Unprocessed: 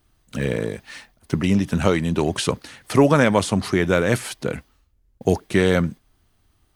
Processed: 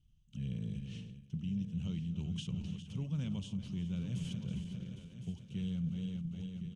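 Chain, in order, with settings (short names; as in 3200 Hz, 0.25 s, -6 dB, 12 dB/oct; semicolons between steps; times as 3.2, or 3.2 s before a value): regenerating reverse delay 0.202 s, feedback 73%, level -13 dB; EQ curve 110 Hz 0 dB, 180 Hz +4 dB, 290 Hz -16 dB, 550 Hz -25 dB, 1200 Hz -25 dB, 1900 Hz -28 dB, 3000 Hz -3 dB, 4300 Hz -18 dB, 6400 Hz -10 dB, 12000 Hz -29 dB; reverse; compressor 6:1, threshold -31 dBFS, peak gain reduction 16 dB; reverse; echo 1.06 s -10.5 dB; ending taper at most 200 dB/s; gain -4.5 dB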